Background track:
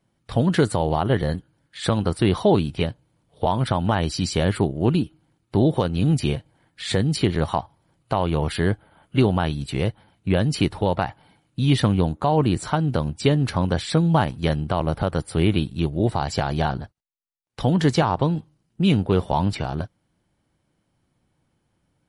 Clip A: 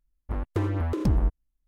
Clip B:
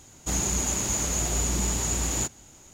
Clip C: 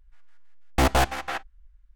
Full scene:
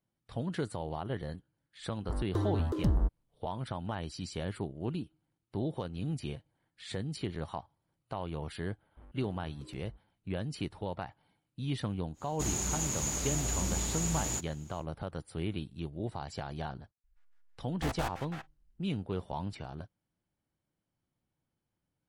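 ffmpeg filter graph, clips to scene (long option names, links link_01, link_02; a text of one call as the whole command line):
ffmpeg -i bed.wav -i cue0.wav -i cue1.wav -i cue2.wav -filter_complex "[1:a]asplit=2[link_01][link_02];[0:a]volume=-16dB[link_03];[link_01]equalizer=frequency=2400:width=2.8:gain=-14.5[link_04];[link_02]acompressor=threshold=-38dB:ratio=4:attack=33:release=24:knee=1:detection=rms[link_05];[link_04]atrim=end=1.67,asetpts=PTS-STARTPTS,volume=-5dB,afade=type=in:duration=0.004:curve=hsin,afade=type=out:start_time=1.666:duration=0.004:curve=hsin,adelay=1790[link_06];[link_05]atrim=end=1.67,asetpts=PTS-STARTPTS,volume=-18dB,afade=type=in:duration=0.004:curve=hsin,afade=type=out:start_time=1.666:duration=0.004:curve=hsin,adelay=8680[link_07];[2:a]atrim=end=2.73,asetpts=PTS-STARTPTS,volume=-7dB,afade=type=in:duration=0.1,afade=type=out:start_time=2.63:duration=0.1,adelay=12130[link_08];[3:a]atrim=end=1.95,asetpts=PTS-STARTPTS,volume=-15.5dB,afade=type=in:duration=0.004:curve=hsin,afade=type=out:start_time=1.946:duration=0.004:curve=hsin,adelay=17040[link_09];[link_03][link_06][link_07][link_08][link_09]amix=inputs=5:normalize=0" out.wav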